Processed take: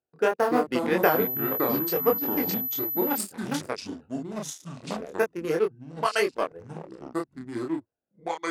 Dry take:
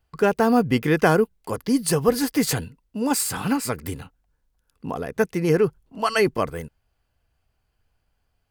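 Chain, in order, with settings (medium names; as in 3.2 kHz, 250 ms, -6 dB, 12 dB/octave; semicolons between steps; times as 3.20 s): local Wiener filter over 41 samples; high-pass 380 Hz 12 dB/octave; transient shaper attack +3 dB, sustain -6 dB; chorus 3 Hz, depth 2.4 ms; ever faster or slower copies 217 ms, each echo -5 st, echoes 2, each echo -6 dB; 1.03–3.18 s: class-D stage that switches slowly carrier 12 kHz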